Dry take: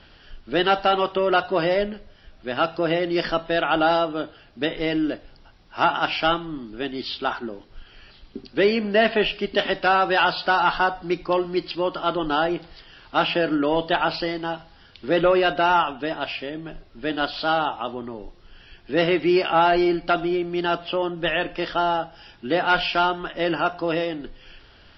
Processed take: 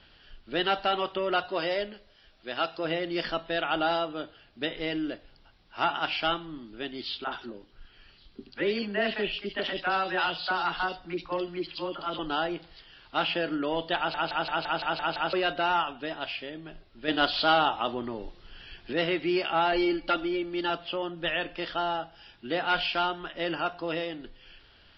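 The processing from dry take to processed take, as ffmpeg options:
ffmpeg -i in.wav -filter_complex "[0:a]asettb=1/sr,asplit=3[link_01][link_02][link_03];[link_01]atrim=end=1.494[link_04];[link_02]atrim=start=1.49:end=2.85,asetpts=PTS-STARTPTS,afade=type=in:duration=0.004:curve=qsin,afade=type=out:start_time=1.356:duration=0.004:curve=qsin,bass=frequency=250:gain=-7,treble=frequency=4000:gain=6[link_05];[link_03]atrim=start=2.846[link_06];[link_04][link_05]acrossfade=duration=0.004:curve1=hsin:curve2=qsin[link_07];[link_07][link_06]acrossfade=duration=0.004:curve1=qsin:curve2=hsin,asettb=1/sr,asplit=3[link_08][link_09][link_10];[link_08]atrim=end=7.244[link_11];[link_09]atrim=start=7.24:end=12.19,asetpts=PTS-STARTPTS,afade=type=in:duration=0.004:curve=qsin,afade=type=out:start_time=4.946:duration=0.004:curve=qsin,acrossover=split=660|2700[link_12][link_13][link_14];[link_12]adelay=30[link_15];[link_14]adelay=70[link_16];[link_15][link_13][link_16]amix=inputs=3:normalize=0,atrim=end_sample=218295[link_17];[link_10]atrim=start=12.186[link_18];[link_11][link_17]acrossfade=duration=0.004:curve1=hsin:curve2=qsin[link_19];[link_19][link_18]acrossfade=duration=0.004:curve1=qsin:curve2=hsin,asettb=1/sr,asplit=3[link_20][link_21][link_22];[link_20]atrim=end=17.084[link_23];[link_21]atrim=start=17.08:end=18.93,asetpts=PTS-STARTPTS,afade=type=in:duration=0.004:curve=qsin,afade=type=out:start_time=1.846:duration=0.004:curve=qsin,acontrast=85[link_24];[link_22]atrim=start=18.926[link_25];[link_23][link_24]acrossfade=duration=0.004:curve1=hsin:curve2=qsin[link_26];[link_26][link_25]acrossfade=duration=0.004:curve1=qsin:curve2=hsin,asettb=1/sr,asplit=3[link_27][link_28][link_29];[link_27]atrim=end=19.724[link_30];[link_28]atrim=start=19.72:end=20.7,asetpts=PTS-STARTPTS,afade=type=in:duration=0.004:curve=qsin,afade=type=out:start_time=0.976:duration=0.004:curve=qsin,aecho=1:1:3.5:0.69,atrim=end_sample=43218[link_31];[link_29]atrim=start=20.696[link_32];[link_30][link_31]acrossfade=duration=0.004:curve1=hsin:curve2=qsin[link_33];[link_33][link_32]acrossfade=duration=0.004:curve1=qsin:curve2=hsin,asplit=9[link_34][link_35][link_36][link_37][link_38][link_39][link_40][link_41][link_42];[link_34]atrim=end=14.142[link_43];[link_35]atrim=start=13.968:end=14.142[link_44];[link_36]atrim=start=13.968:end=14.142[link_45];[link_37]atrim=start=13.968:end=14.142[link_46];[link_38]atrim=start=13.968:end=14.142[link_47];[link_39]atrim=start=13.968:end=14.142[link_48];[link_40]atrim=start=13.968:end=14.142[link_49];[link_41]atrim=start=13.968:end=14.142[link_50];[link_42]atrim=start=15.328[link_51];[link_43][link_44]acrossfade=duration=0.004:curve1=hsin:curve2=hsin[link_52];[link_52][link_45]acrossfade=duration=0.004:curve1=hsin:curve2=hsin[link_53];[link_53][link_46]acrossfade=duration=0.004:curve1=hsin:curve2=hsin[link_54];[link_54][link_47]acrossfade=duration=0.004:curve1=hsin:curve2=hsin[link_55];[link_55][link_48]acrossfade=duration=0.004:curve1=hsin:curve2=hsin[link_56];[link_56][link_49]acrossfade=duration=0.004:curve1=hsin:curve2=hsin[link_57];[link_57][link_50]acrossfade=duration=0.004:curve1=hsin:curve2=hsin[link_58];[link_58][link_51]acrossfade=duration=0.004:curve1=hsin:curve2=hsin,lowpass=frequency=4600:width=0.5412,lowpass=frequency=4600:width=1.3066,highshelf=frequency=2900:gain=9,volume=-8.5dB" out.wav

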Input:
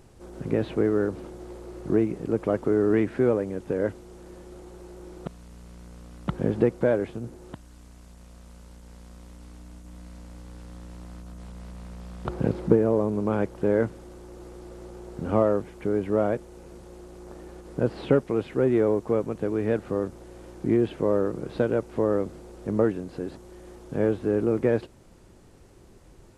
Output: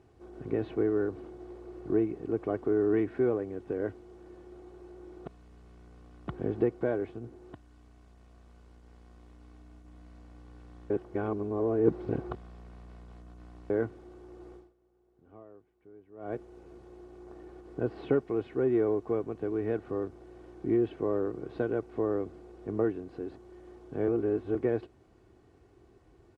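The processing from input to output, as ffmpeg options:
ffmpeg -i in.wav -filter_complex "[0:a]asplit=7[link_01][link_02][link_03][link_04][link_05][link_06][link_07];[link_01]atrim=end=10.902[link_08];[link_02]atrim=start=10.898:end=13.702,asetpts=PTS-STARTPTS,areverse[link_09];[link_03]atrim=start=13.698:end=14.76,asetpts=PTS-STARTPTS,afade=type=out:start_time=0.842:duration=0.22:curve=qua:silence=0.0707946[link_10];[link_04]atrim=start=14.76:end=16.13,asetpts=PTS-STARTPTS,volume=-23dB[link_11];[link_05]atrim=start=16.13:end=24.082,asetpts=PTS-STARTPTS,afade=type=in:duration=0.22:curve=qua:silence=0.0707946[link_12];[link_06]atrim=start=24.078:end=24.552,asetpts=PTS-STARTPTS,areverse[link_13];[link_07]atrim=start=24.548[link_14];[link_08][link_09]acrossfade=duration=0.004:curve1=hsin:curve2=hsin[link_15];[link_10][link_11][link_12]concat=n=3:v=0:a=1[link_16];[link_15][link_16]acrossfade=duration=0.004:curve1=hsin:curve2=hsin[link_17];[link_17][link_13]acrossfade=duration=0.004:curve1=hsin:curve2=hsin[link_18];[link_18][link_14]acrossfade=duration=0.004:curve1=hsin:curve2=hsin,highpass=65,aemphasis=mode=reproduction:type=75fm,aecho=1:1:2.7:0.5,volume=-7.5dB" out.wav

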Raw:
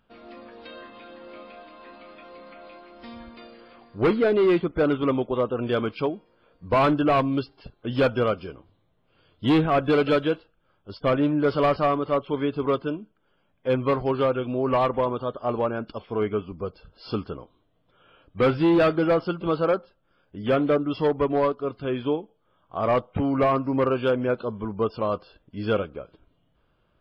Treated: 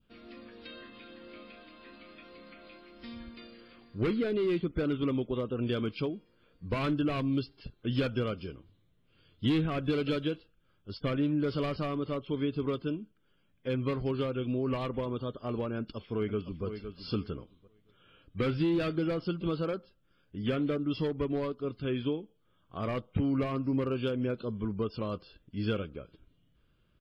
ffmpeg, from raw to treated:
ffmpeg -i in.wav -filter_complex "[0:a]asplit=2[link_01][link_02];[link_02]afade=type=in:start_time=15.77:duration=0.01,afade=type=out:start_time=16.65:duration=0.01,aecho=0:1:510|1020|1530:0.281838|0.0563677|0.0112735[link_03];[link_01][link_03]amix=inputs=2:normalize=0,adynamicequalizer=threshold=0.00794:dfrequency=1700:dqfactor=1.4:tfrequency=1700:tqfactor=1.4:attack=5:release=100:ratio=0.375:range=2.5:mode=cutabove:tftype=bell,acompressor=threshold=-22dB:ratio=6,equalizer=frequency=790:width_type=o:width=1.5:gain=-14" out.wav

